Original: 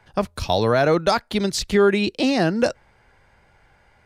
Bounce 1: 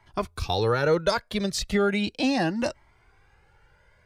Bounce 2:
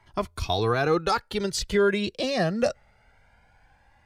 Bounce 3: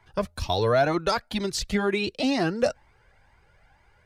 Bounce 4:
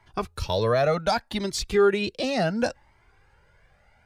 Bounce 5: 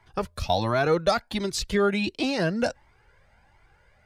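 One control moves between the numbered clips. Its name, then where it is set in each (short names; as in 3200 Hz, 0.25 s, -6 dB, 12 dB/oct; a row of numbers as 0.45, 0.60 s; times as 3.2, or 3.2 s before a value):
cascading flanger, rate: 0.36, 0.22, 2.1, 0.68, 1.4 Hz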